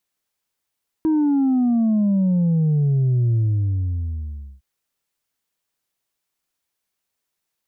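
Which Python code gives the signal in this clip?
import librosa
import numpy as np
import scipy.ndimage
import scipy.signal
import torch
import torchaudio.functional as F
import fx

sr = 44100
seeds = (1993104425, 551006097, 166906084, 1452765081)

y = fx.sub_drop(sr, level_db=-15.5, start_hz=320.0, length_s=3.56, drive_db=2, fade_s=1.27, end_hz=65.0)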